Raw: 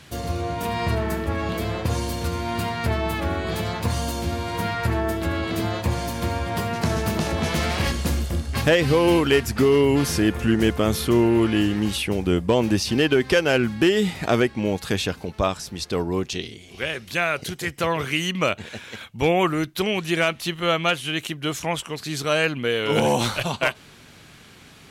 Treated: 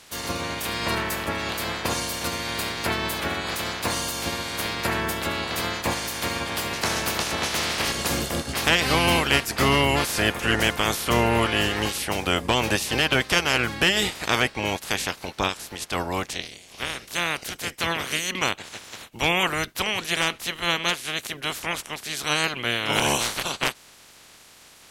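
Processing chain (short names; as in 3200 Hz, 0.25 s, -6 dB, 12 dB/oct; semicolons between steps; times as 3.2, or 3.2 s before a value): spectral limiter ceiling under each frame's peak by 22 dB; gain -2.5 dB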